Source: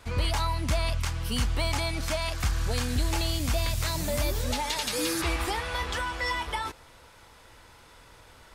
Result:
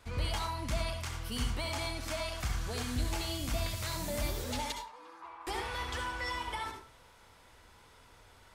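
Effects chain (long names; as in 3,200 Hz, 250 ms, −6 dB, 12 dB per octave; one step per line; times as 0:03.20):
0:04.72–0:05.47: resonant band-pass 980 Hz, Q 5.5
convolution reverb RT60 0.30 s, pre-delay 57 ms, DRR 3.5 dB
level −7.5 dB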